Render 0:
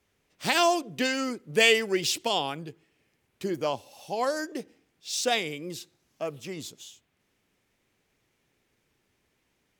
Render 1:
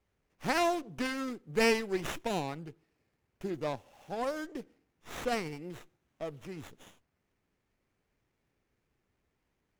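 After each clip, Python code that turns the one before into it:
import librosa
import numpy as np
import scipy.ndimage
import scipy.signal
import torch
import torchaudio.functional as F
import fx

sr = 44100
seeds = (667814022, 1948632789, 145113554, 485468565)

y = fx.low_shelf(x, sr, hz=74.0, db=10.5)
y = fx.running_max(y, sr, window=9)
y = y * 10.0 ** (-6.5 / 20.0)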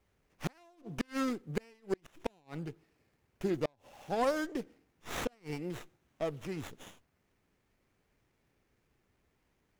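y = fx.gate_flip(x, sr, shuts_db=-24.0, range_db=-37)
y = y * 10.0 ** (4.0 / 20.0)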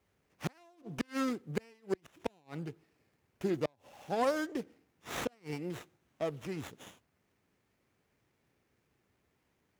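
y = scipy.signal.sosfilt(scipy.signal.butter(2, 73.0, 'highpass', fs=sr, output='sos'), x)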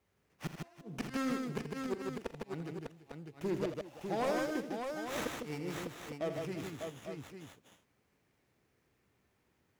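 y = np.clip(10.0 ** (28.0 / 20.0) * x, -1.0, 1.0) / 10.0 ** (28.0 / 20.0)
y = fx.echo_multitap(y, sr, ms=(43, 83, 154, 339, 600, 851), db=(-15.5, -10.0, -4.0, -16.5, -5.5, -9.0))
y = y * 10.0 ** (-2.0 / 20.0)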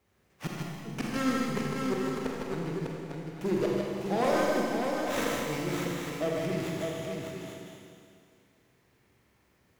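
y = fx.rev_schroeder(x, sr, rt60_s=2.2, comb_ms=31, drr_db=-1.0)
y = y * 10.0 ** (4.5 / 20.0)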